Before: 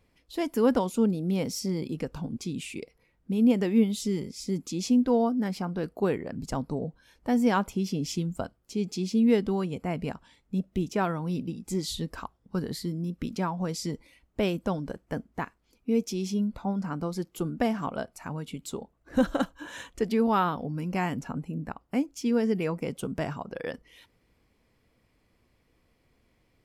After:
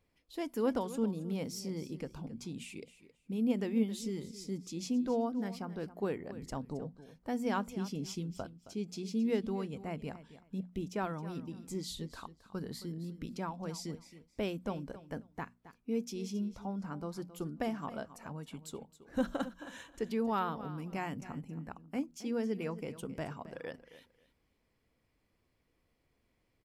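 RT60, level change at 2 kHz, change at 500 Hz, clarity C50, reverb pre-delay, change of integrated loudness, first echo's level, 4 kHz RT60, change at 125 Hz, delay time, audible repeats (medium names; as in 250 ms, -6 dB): no reverb, -8.5 dB, -8.5 dB, no reverb, no reverb, -9.0 dB, -15.0 dB, no reverb, -9.0 dB, 269 ms, 2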